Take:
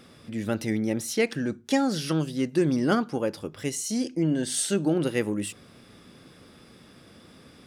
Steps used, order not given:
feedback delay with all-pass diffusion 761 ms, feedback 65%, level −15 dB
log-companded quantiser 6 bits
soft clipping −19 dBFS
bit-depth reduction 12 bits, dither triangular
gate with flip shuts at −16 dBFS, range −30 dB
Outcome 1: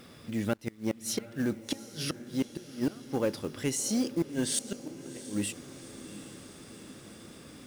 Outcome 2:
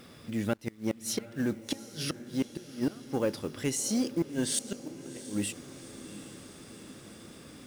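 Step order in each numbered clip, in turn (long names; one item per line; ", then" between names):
bit-depth reduction, then gate with flip, then soft clipping, then log-companded quantiser, then feedback delay with all-pass diffusion
bit-depth reduction, then gate with flip, then log-companded quantiser, then soft clipping, then feedback delay with all-pass diffusion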